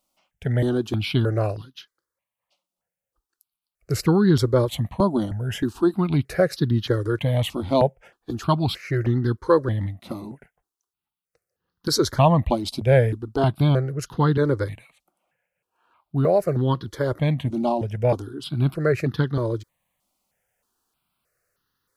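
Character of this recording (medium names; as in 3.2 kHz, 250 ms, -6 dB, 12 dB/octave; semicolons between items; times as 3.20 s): notches that jump at a steady rate 3.2 Hz 450–2300 Hz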